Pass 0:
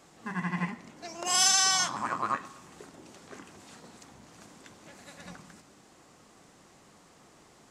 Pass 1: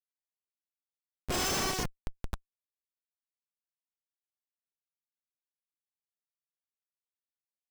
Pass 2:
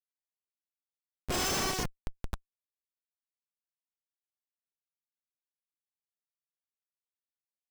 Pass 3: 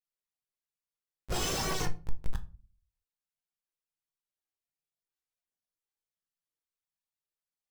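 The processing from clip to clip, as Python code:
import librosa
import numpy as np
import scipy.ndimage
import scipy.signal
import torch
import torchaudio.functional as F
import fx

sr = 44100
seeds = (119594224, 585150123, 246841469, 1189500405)

y1 = fx.tilt_shelf(x, sr, db=-10.0, hz=810.0)
y1 = fx.echo_diffused(y1, sr, ms=481, feedback_pct=41, wet_db=-15.5)
y1 = fx.schmitt(y1, sr, flips_db=-14.0)
y1 = y1 * librosa.db_to_amplitude(-4.0)
y2 = y1
y3 = fx.chorus_voices(y2, sr, voices=4, hz=0.7, base_ms=18, depth_ms=1.3, mix_pct=70)
y3 = fx.room_shoebox(y3, sr, seeds[0], volume_m3=190.0, walls='furnished', distance_m=0.61)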